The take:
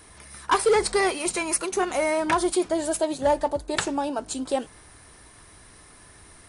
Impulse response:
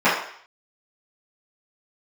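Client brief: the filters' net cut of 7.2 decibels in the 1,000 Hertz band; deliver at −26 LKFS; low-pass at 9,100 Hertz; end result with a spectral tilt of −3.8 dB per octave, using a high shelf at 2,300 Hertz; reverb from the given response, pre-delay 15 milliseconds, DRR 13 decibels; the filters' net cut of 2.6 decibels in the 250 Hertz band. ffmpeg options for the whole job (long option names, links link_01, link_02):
-filter_complex "[0:a]lowpass=9100,equalizer=frequency=250:width_type=o:gain=-3,equalizer=frequency=1000:width_type=o:gain=-7.5,highshelf=frequency=2300:gain=-7,asplit=2[link_01][link_02];[1:a]atrim=start_sample=2205,adelay=15[link_03];[link_02][link_03]afir=irnorm=-1:irlink=0,volume=-36dB[link_04];[link_01][link_04]amix=inputs=2:normalize=0,volume=2.5dB"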